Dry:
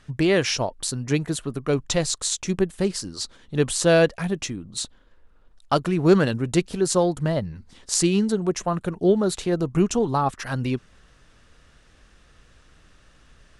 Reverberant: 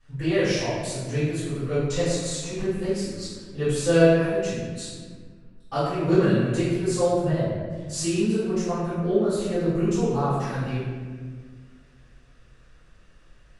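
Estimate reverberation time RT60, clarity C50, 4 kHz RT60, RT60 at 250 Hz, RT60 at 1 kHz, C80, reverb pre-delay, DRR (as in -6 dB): 1.6 s, -2.5 dB, 1.0 s, 2.2 s, 1.5 s, 0.5 dB, 3 ms, -18.5 dB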